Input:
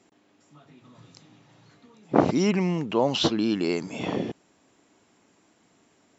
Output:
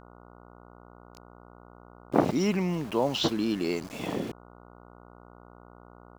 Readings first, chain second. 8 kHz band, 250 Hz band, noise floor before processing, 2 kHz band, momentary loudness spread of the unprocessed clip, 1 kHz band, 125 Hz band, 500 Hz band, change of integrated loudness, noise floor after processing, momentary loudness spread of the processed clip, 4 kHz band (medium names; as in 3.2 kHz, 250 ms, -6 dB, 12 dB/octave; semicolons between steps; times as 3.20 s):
no reading, -3.5 dB, -64 dBFS, -3.5 dB, 8 LU, -3.5 dB, -3.5 dB, -3.5 dB, -3.5 dB, -52 dBFS, 9 LU, -3.5 dB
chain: small samples zeroed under -36.5 dBFS; mains buzz 60 Hz, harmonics 24, -48 dBFS -2 dB/octave; trim -3.5 dB